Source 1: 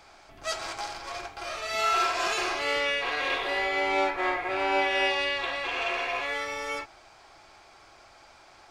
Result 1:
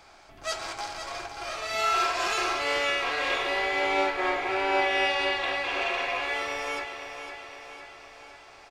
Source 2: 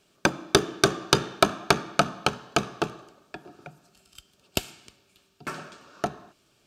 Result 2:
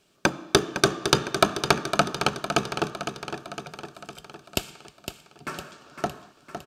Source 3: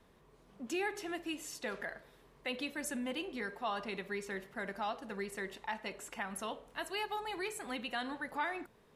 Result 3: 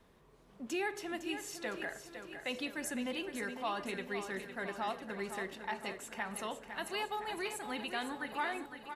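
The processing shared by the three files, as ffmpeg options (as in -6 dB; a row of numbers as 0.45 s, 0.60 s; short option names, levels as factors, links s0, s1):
-af "aecho=1:1:508|1016|1524|2032|2540|3048|3556:0.355|0.202|0.115|0.0657|0.0375|0.0213|0.0122"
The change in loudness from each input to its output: +0.5 LU, 0.0 LU, +0.5 LU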